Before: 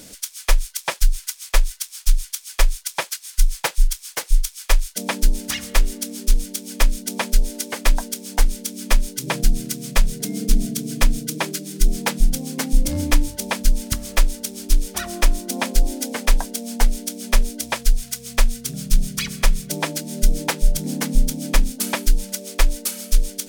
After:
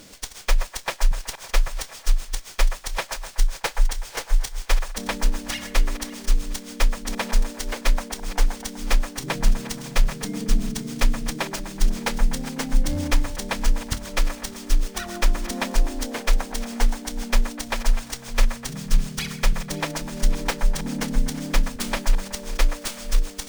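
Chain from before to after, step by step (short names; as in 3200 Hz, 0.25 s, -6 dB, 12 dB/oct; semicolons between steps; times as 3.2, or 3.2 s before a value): regenerating reverse delay 0.279 s, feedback 55%, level -13.5 dB; band-limited delay 0.125 s, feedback 53%, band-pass 990 Hz, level -7 dB; running maximum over 3 samples; gain -3 dB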